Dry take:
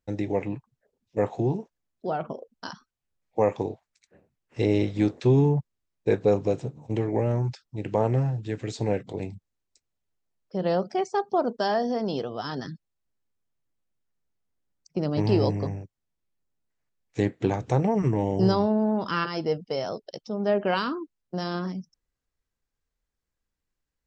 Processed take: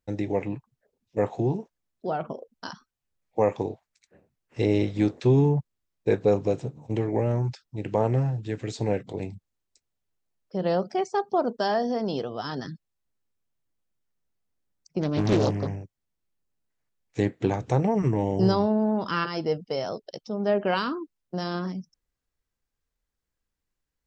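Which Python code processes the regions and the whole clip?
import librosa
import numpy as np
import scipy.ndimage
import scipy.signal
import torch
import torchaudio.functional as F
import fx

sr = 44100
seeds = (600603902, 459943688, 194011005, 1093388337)

y = fx.chain(x, sr, fx.peak_eq(hz=2300.0, db=4.0, octaves=1.7),
    fx.doppler_dist(depth_ms=0.7), at=(15.01, 15.76))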